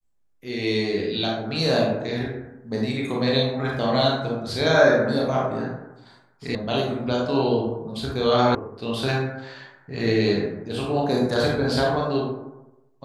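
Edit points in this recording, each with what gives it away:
6.55 sound cut off
8.55 sound cut off

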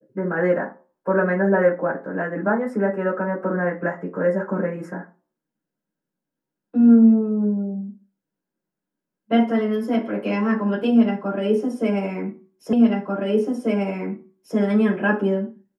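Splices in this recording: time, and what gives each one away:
12.73 repeat of the last 1.84 s

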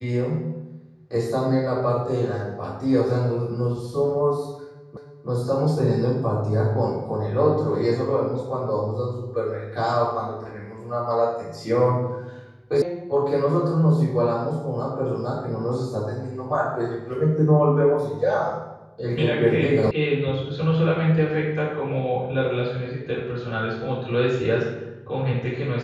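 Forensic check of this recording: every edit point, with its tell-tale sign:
4.97 repeat of the last 0.31 s
12.82 sound cut off
19.91 sound cut off

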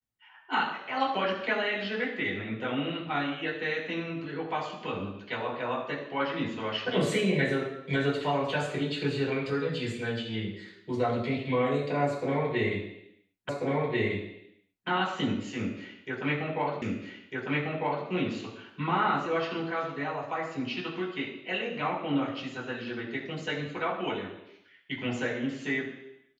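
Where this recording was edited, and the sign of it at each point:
13.49 repeat of the last 1.39 s
16.82 repeat of the last 1.25 s

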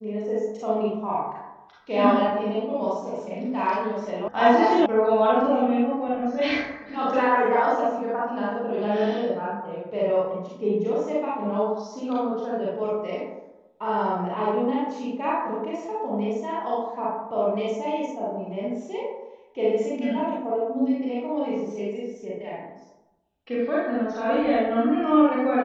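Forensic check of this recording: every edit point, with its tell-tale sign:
4.28 sound cut off
4.86 sound cut off

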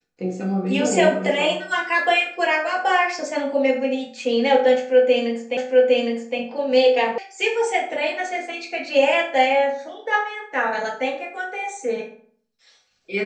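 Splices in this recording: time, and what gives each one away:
5.57 repeat of the last 0.81 s
7.18 sound cut off

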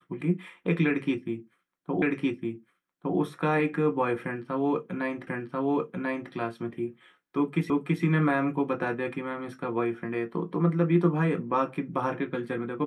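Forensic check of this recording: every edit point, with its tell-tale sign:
2.02 repeat of the last 1.16 s
5.27 repeat of the last 1.04 s
7.7 repeat of the last 0.33 s

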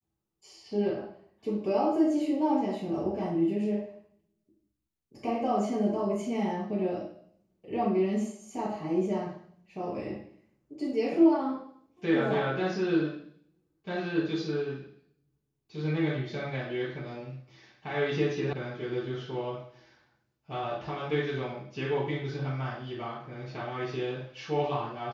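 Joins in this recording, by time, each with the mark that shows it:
18.53 sound cut off

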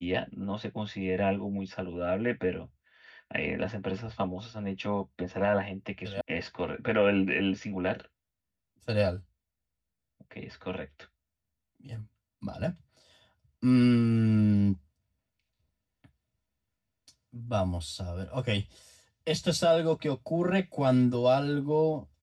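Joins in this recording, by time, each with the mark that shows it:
6.21 sound cut off

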